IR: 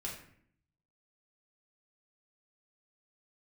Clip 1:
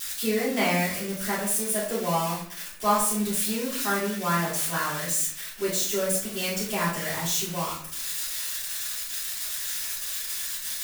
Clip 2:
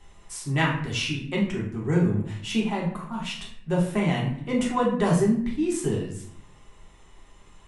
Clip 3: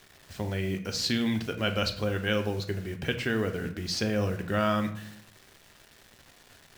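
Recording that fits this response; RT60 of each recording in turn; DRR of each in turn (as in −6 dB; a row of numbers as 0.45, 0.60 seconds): 2; 0.60, 0.60, 0.60 seconds; −11.0, −4.0, 6.0 decibels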